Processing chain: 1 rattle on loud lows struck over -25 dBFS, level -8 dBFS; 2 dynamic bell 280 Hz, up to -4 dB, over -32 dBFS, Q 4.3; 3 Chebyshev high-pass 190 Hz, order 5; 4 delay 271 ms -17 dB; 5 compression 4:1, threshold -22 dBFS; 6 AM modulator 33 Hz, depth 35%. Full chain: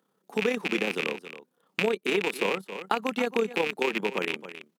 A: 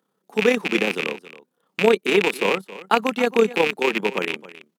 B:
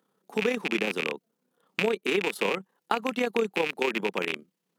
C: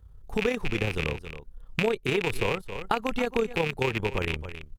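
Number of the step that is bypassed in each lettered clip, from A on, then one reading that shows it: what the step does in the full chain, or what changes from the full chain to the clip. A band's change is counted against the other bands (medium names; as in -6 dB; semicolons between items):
5, mean gain reduction 5.0 dB; 4, momentary loudness spread change -1 LU; 3, 125 Hz band +12.5 dB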